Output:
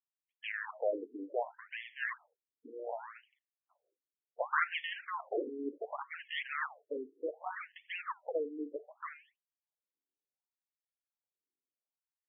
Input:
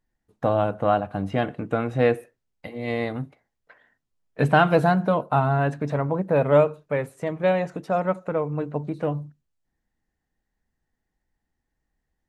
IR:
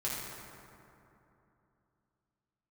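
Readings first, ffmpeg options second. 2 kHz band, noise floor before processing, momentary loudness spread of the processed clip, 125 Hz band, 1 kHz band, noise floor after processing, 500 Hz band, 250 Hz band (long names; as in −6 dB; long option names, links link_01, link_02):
−8.0 dB, −80 dBFS, 12 LU, below −40 dB, −15.5 dB, below −85 dBFS, −17.0 dB, −20.0 dB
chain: -af "agate=range=-10dB:threshold=-47dB:ratio=16:detection=peak,acrusher=samples=26:mix=1:aa=0.000001:lfo=1:lforange=26:lforate=2.1,afftfilt=real='re*between(b*sr/1024,320*pow(2500/320,0.5+0.5*sin(2*PI*0.67*pts/sr))/1.41,320*pow(2500/320,0.5+0.5*sin(2*PI*0.67*pts/sr))*1.41)':imag='im*between(b*sr/1024,320*pow(2500/320,0.5+0.5*sin(2*PI*0.67*pts/sr))/1.41,320*pow(2500/320,0.5+0.5*sin(2*PI*0.67*pts/sr))*1.41)':win_size=1024:overlap=0.75,volume=-7.5dB"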